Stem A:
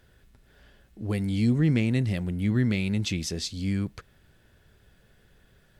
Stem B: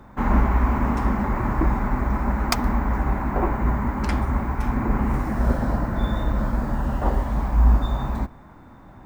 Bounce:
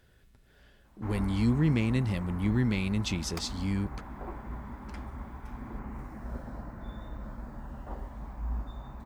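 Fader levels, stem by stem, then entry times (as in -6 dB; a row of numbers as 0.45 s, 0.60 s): -3.0 dB, -18.0 dB; 0.00 s, 0.85 s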